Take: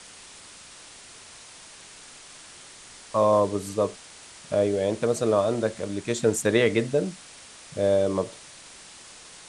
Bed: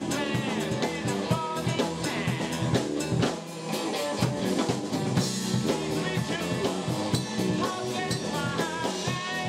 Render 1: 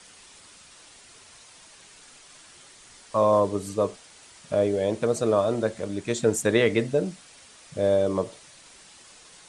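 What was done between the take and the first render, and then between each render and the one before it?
denoiser 6 dB, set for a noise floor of -47 dBFS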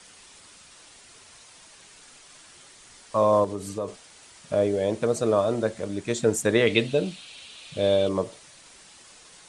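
3.44–3.88 compressor 2.5:1, threshold -28 dBFS; 6.67–8.09 band shelf 3200 Hz +11.5 dB 1 oct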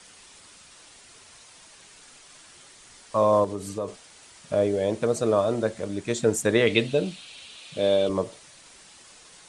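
7.6–8.1 HPF 140 Hz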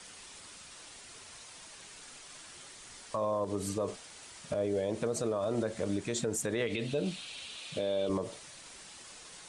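compressor, threshold -23 dBFS, peak gain reduction 8 dB; limiter -23 dBFS, peak gain reduction 10.5 dB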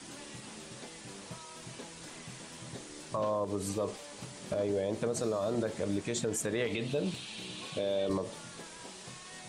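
add bed -20.5 dB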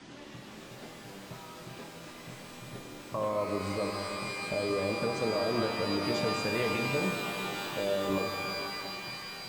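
air absorption 150 m; shimmer reverb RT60 3 s, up +12 st, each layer -2 dB, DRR 4.5 dB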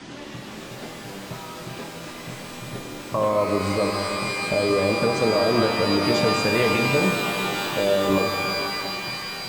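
gain +10 dB

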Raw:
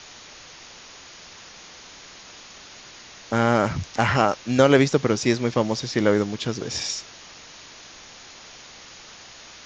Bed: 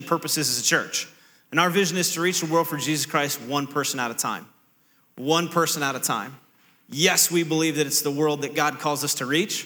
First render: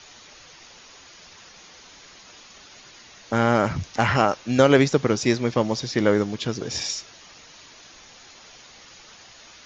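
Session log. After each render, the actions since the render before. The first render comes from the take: denoiser 6 dB, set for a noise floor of -45 dBFS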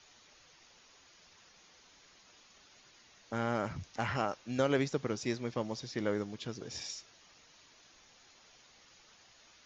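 gain -14 dB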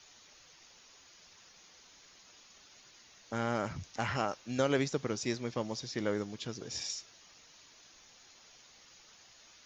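high shelf 5900 Hz +8.5 dB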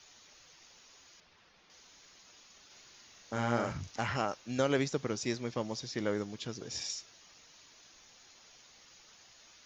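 1.2–1.7 air absorption 210 m; 2.66–4.01 doubler 42 ms -4 dB

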